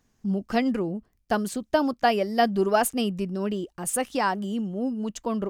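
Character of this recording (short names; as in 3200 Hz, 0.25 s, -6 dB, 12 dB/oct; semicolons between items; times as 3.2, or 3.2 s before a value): noise floor -69 dBFS; spectral tilt -4.5 dB/oct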